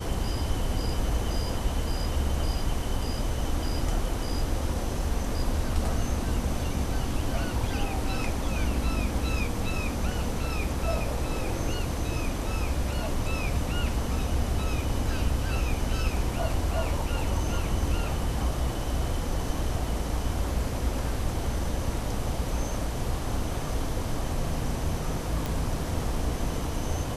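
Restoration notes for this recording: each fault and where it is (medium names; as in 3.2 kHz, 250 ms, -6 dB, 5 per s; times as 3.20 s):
25.46 s: pop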